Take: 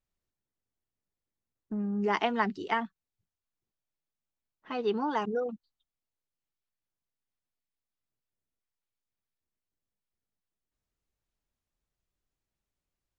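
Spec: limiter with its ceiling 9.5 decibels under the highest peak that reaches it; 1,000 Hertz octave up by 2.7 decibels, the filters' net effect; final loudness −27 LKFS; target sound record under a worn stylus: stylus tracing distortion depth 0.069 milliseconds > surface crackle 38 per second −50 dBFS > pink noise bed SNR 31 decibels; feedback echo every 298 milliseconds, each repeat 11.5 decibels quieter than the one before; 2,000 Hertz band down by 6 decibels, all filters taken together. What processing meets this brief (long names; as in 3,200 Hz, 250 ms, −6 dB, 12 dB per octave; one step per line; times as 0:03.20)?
parametric band 1,000 Hz +5 dB
parametric band 2,000 Hz −9 dB
brickwall limiter −22.5 dBFS
repeating echo 298 ms, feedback 27%, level −11.5 dB
stylus tracing distortion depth 0.069 ms
surface crackle 38 per second −50 dBFS
pink noise bed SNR 31 dB
level +6.5 dB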